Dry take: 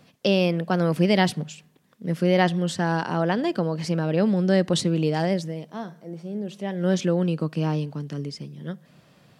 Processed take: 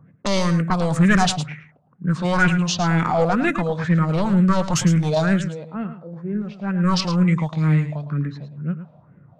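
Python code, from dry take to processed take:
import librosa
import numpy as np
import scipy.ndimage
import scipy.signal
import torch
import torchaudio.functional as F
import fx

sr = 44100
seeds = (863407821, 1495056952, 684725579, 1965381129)

p1 = fx.highpass(x, sr, hz=130.0, slope=6)
p2 = fx.fold_sine(p1, sr, drive_db=12, ceiling_db=-4.5)
p3 = p1 + F.gain(torch.from_numpy(p2), -7.0).numpy()
p4 = fx.peak_eq(p3, sr, hz=2300.0, db=4.0, octaves=2.4)
p5 = fx.env_lowpass(p4, sr, base_hz=670.0, full_db=-10.0)
p6 = fx.phaser_stages(p5, sr, stages=4, low_hz=320.0, high_hz=1000.0, hz=2.1, feedback_pct=45)
p7 = fx.formant_shift(p6, sr, semitones=-4)
p8 = p7 + fx.echo_single(p7, sr, ms=109, db=-11.5, dry=0)
y = F.gain(torch.from_numpy(p8), -1.5).numpy()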